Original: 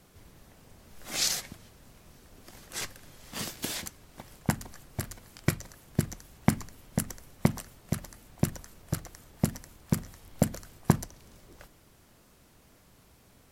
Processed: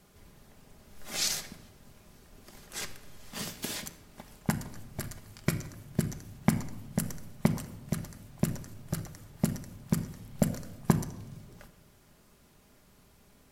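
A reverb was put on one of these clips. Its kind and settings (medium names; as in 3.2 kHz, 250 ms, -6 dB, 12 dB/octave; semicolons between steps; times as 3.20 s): simulated room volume 3700 m³, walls furnished, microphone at 1.3 m; trim -2.5 dB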